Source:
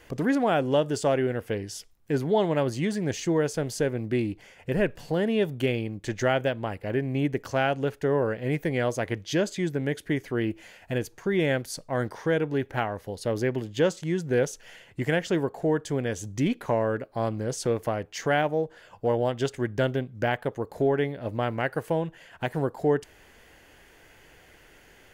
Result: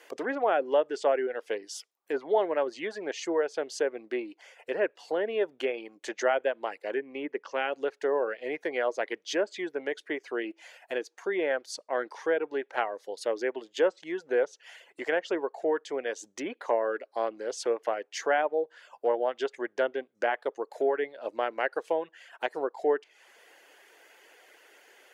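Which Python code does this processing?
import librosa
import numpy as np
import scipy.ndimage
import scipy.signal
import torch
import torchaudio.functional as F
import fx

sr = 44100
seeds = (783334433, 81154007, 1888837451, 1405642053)

y = fx.cabinet(x, sr, low_hz=140.0, low_slope=12, high_hz=5100.0, hz=(180.0, 690.0, 1500.0, 4200.0), db=(9, -10, -4, -10), at=(7.0, 7.73))
y = fx.env_lowpass_down(y, sr, base_hz=2100.0, full_db=-20.5)
y = fx.dereverb_blind(y, sr, rt60_s=0.51)
y = scipy.signal.sosfilt(scipy.signal.butter(4, 380.0, 'highpass', fs=sr, output='sos'), y)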